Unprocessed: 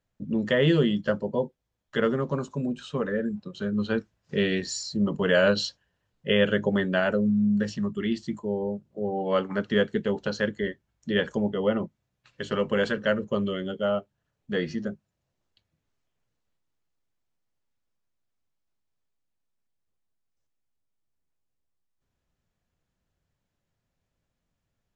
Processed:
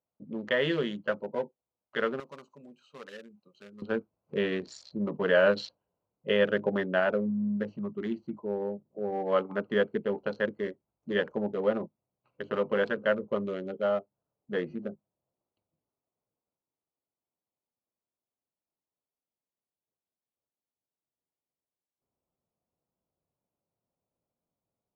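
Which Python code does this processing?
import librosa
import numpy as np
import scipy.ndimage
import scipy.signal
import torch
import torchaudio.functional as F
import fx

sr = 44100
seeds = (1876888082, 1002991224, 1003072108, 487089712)

y = fx.wiener(x, sr, points=25)
y = fx.bandpass_q(y, sr, hz=fx.steps((0.0, 1500.0), (2.2, 6400.0), (3.82, 860.0)), q=0.5)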